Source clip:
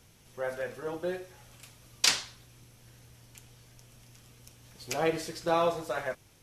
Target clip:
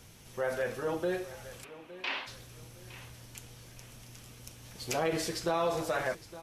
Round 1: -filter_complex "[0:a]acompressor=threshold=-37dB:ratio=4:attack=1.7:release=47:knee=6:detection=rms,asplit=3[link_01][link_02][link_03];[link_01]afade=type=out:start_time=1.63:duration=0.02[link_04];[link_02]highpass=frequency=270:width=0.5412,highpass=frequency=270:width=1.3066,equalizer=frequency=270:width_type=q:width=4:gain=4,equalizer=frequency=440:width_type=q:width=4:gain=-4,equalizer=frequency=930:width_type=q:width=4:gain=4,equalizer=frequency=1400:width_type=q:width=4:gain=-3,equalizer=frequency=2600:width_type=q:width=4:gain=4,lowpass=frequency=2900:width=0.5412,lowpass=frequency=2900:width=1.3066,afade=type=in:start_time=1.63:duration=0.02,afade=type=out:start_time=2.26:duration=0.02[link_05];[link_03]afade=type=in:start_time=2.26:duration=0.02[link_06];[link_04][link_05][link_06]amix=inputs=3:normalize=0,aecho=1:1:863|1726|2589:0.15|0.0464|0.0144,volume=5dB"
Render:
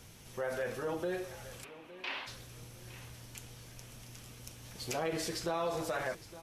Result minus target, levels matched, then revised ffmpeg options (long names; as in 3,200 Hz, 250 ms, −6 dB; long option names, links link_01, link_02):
downward compressor: peak gain reduction +4.5 dB
-filter_complex "[0:a]acompressor=threshold=-31dB:ratio=4:attack=1.7:release=47:knee=6:detection=rms,asplit=3[link_01][link_02][link_03];[link_01]afade=type=out:start_time=1.63:duration=0.02[link_04];[link_02]highpass=frequency=270:width=0.5412,highpass=frequency=270:width=1.3066,equalizer=frequency=270:width_type=q:width=4:gain=4,equalizer=frequency=440:width_type=q:width=4:gain=-4,equalizer=frequency=930:width_type=q:width=4:gain=4,equalizer=frequency=1400:width_type=q:width=4:gain=-3,equalizer=frequency=2600:width_type=q:width=4:gain=4,lowpass=frequency=2900:width=0.5412,lowpass=frequency=2900:width=1.3066,afade=type=in:start_time=1.63:duration=0.02,afade=type=out:start_time=2.26:duration=0.02[link_05];[link_03]afade=type=in:start_time=2.26:duration=0.02[link_06];[link_04][link_05][link_06]amix=inputs=3:normalize=0,aecho=1:1:863|1726|2589:0.15|0.0464|0.0144,volume=5dB"